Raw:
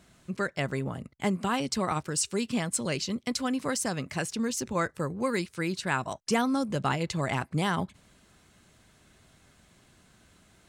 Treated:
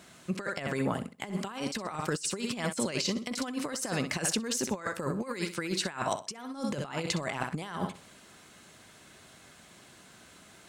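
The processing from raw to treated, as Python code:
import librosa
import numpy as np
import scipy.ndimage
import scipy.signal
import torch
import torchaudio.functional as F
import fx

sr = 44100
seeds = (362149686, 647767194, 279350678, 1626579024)

y = fx.highpass(x, sr, hz=280.0, slope=6)
y = fx.room_flutter(y, sr, wall_m=10.9, rt60_s=0.3)
y = fx.over_compress(y, sr, threshold_db=-35.0, ratio=-0.5)
y = y * librosa.db_to_amplitude(3.0)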